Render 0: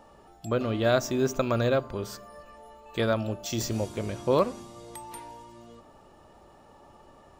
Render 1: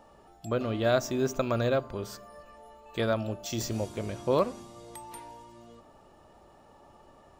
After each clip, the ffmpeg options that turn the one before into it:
-af "equalizer=f=670:w=4.9:g=2,volume=-2.5dB"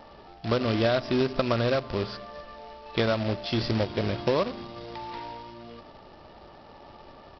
-af "aresample=11025,acrusher=bits=2:mode=log:mix=0:aa=0.000001,aresample=44100,acompressor=threshold=-27dB:ratio=10,volume=7dB"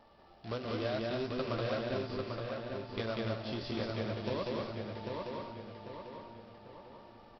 -filter_complex "[0:a]asplit=2[a][b];[b]aecho=0:1:192.4|271.1:0.794|0.316[c];[a][c]amix=inputs=2:normalize=0,flanger=delay=8.1:depth=7.2:regen=-46:speed=0.95:shape=triangular,asplit=2[d][e];[e]adelay=795,lowpass=f=4.3k:p=1,volume=-4dB,asplit=2[f][g];[g]adelay=795,lowpass=f=4.3k:p=1,volume=0.45,asplit=2[h][i];[i]adelay=795,lowpass=f=4.3k:p=1,volume=0.45,asplit=2[j][k];[k]adelay=795,lowpass=f=4.3k:p=1,volume=0.45,asplit=2[l][m];[m]adelay=795,lowpass=f=4.3k:p=1,volume=0.45,asplit=2[n][o];[o]adelay=795,lowpass=f=4.3k:p=1,volume=0.45[p];[f][h][j][l][n][p]amix=inputs=6:normalize=0[q];[d][q]amix=inputs=2:normalize=0,volume=-9dB"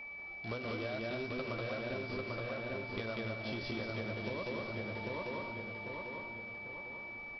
-af "acompressor=threshold=-37dB:ratio=6,aeval=exprs='val(0)+0.00562*sin(2*PI*2300*n/s)':c=same,volume=1dB"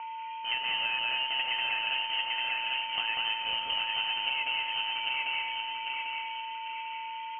-af "lowpass=f=2.7k:t=q:w=0.5098,lowpass=f=2.7k:t=q:w=0.6013,lowpass=f=2.7k:t=q:w=0.9,lowpass=f=2.7k:t=q:w=2.563,afreqshift=-3200,volume=8dB"

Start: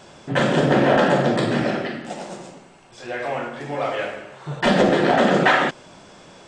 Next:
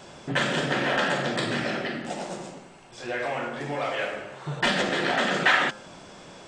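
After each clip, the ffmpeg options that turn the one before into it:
-filter_complex "[0:a]bandreject=f=105.3:t=h:w=4,bandreject=f=210.6:t=h:w=4,bandreject=f=315.9:t=h:w=4,bandreject=f=421.2:t=h:w=4,bandreject=f=526.5:t=h:w=4,bandreject=f=631.8:t=h:w=4,bandreject=f=737.1:t=h:w=4,bandreject=f=842.4:t=h:w=4,bandreject=f=947.7:t=h:w=4,bandreject=f=1.053k:t=h:w=4,bandreject=f=1.1583k:t=h:w=4,bandreject=f=1.2636k:t=h:w=4,bandreject=f=1.3689k:t=h:w=4,bandreject=f=1.4742k:t=h:w=4,bandreject=f=1.5795k:t=h:w=4,bandreject=f=1.6848k:t=h:w=4,acrossover=split=1300[a][b];[a]acompressor=threshold=-28dB:ratio=4[c];[c][b]amix=inputs=2:normalize=0"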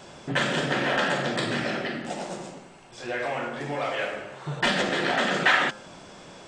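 -af anull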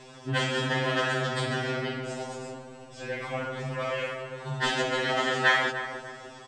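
-filter_complex "[0:a]asplit=2[a][b];[b]adelay=299,lowpass=f=1.3k:p=1,volume=-8dB,asplit=2[c][d];[d]adelay=299,lowpass=f=1.3k:p=1,volume=0.51,asplit=2[e][f];[f]adelay=299,lowpass=f=1.3k:p=1,volume=0.51,asplit=2[g][h];[h]adelay=299,lowpass=f=1.3k:p=1,volume=0.51,asplit=2[i][j];[j]adelay=299,lowpass=f=1.3k:p=1,volume=0.51,asplit=2[k][l];[l]adelay=299,lowpass=f=1.3k:p=1,volume=0.51[m];[a][c][e][g][i][k][m]amix=inputs=7:normalize=0,afftfilt=real='re*2.45*eq(mod(b,6),0)':imag='im*2.45*eq(mod(b,6),0)':win_size=2048:overlap=0.75"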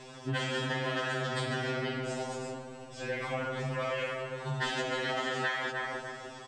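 -af "acompressor=threshold=-29dB:ratio=10"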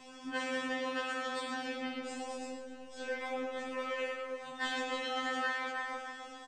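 -af "aecho=1:1:105:0.335,afftfilt=real='re*2*eq(mod(b,4),0)':imag='im*2*eq(mod(b,4),0)':win_size=2048:overlap=0.75,volume=-3.5dB"

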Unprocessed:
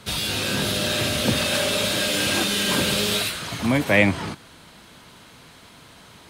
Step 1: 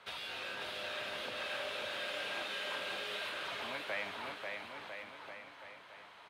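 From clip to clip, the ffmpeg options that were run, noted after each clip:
-filter_complex "[0:a]acompressor=threshold=-27dB:ratio=6,acrossover=split=490 3300:gain=0.0794 1 0.112[a][b][c];[a][b][c]amix=inputs=3:normalize=0,aecho=1:1:540|999|1389|1721|2003:0.631|0.398|0.251|0.158|0.1,volume=-7dB"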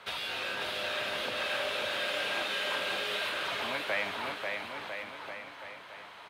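-af "equalizer=f=14k:t=o:w=0.48:g=3,volume=7dB"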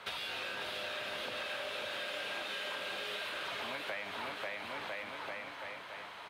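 -af "acompressor=threshold=-38dB:ratio=6,volume=1dB"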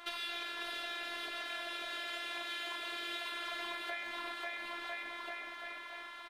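-filter_complex "[0:a]afftfilt=real='hypot(re,im)*cos(PI*b)':imag='0':win_size=512:overlap=0.75,asplit=2[a][b];[b]adelay=130,highpass=300,lowpass=3.4k,asoftclip=type=hard:threshold=-33dB,volume=-6dB[c];[a][c]amix=inputs=2:normalize=0,volume=2.5dB"

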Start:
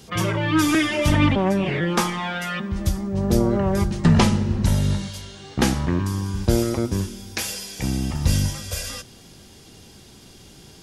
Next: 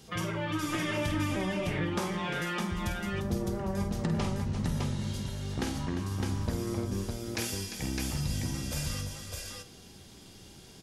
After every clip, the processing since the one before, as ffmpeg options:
-filter_complex "[0:a]flanger=delay=6.2:depth=5.1:regen=81:speed=0.26:shape=sinusoidal,acompressor=threshold=-27dB:ratio=6,asplit=2[a][b];[b]aecho=0:1:49|349|609:0.422|0.299|0.708[c];[a][c]amix=inputs=2:normalize=0,volume=-3dB"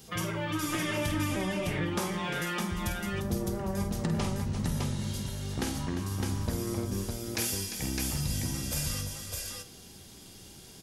-af "highshelf=f=9k:g=11.5"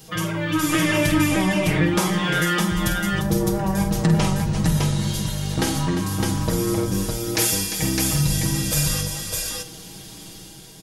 -af "aecho=1:1:6.3:0.65,dynaudnorm=f=170:g=7:m=4.5dB,volume=5dB"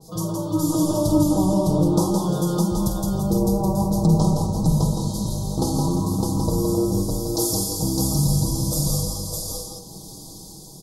-af "asuperstop=centerf=2100:order=8:qfactor=0.67,aecho=1:1:167:0.631,adynamicequalizer=threshold=0.00708:dfrequency=3200:dqfactor=0.7:tfrequency=3200:tqfactor=0.7:attack=5:release=100:ratio=0.375:range=2:mode=cutabove:tftype=highshelf"

